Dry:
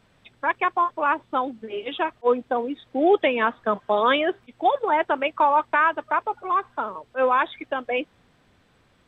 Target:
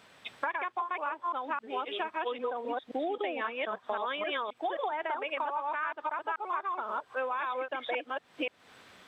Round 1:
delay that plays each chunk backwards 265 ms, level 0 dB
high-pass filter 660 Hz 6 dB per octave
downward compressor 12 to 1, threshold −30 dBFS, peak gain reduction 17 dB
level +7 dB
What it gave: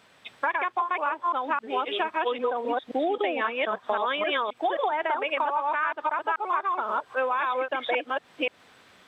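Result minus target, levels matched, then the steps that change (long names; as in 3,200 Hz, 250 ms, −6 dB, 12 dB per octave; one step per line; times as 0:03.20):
downward compressor: peak gain reduction −7 dB
change: downward compressor 12 to 1, threshold −37.5 dBFS, peak gain reduction 24 dB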